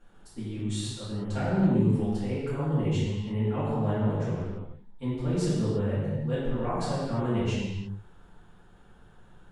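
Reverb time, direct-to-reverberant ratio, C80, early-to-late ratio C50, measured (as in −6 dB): non-exponential decay, −12.5 dB, 0.0 dB, −2.0 dB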